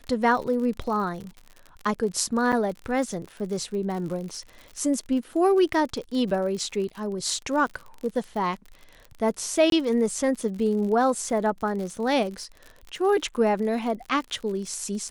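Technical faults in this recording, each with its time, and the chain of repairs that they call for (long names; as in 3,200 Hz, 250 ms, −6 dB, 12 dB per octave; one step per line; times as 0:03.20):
surface crackle 56 per second −33 dBFS
0:02.52–0:02.53: drop-out 7 ms
0:09.70–0:09.72: drop-out 22 ms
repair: click removal
repair the gap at 0:02.52, 7 ms
repair the gap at 0:09.70, 22 ms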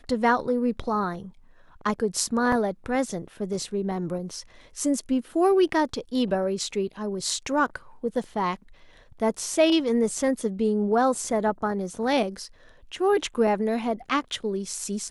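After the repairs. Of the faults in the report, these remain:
none of them is left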